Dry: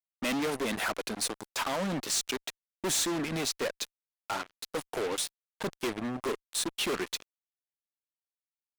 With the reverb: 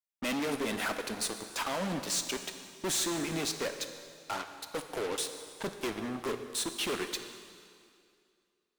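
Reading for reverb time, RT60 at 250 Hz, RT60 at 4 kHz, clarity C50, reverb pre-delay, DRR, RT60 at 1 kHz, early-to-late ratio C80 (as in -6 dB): 2.3 s, 2.4 s, 2.2 s, 8.5 dB, 4 ms, 7.0 dB, 2.3 s, 9.0 dB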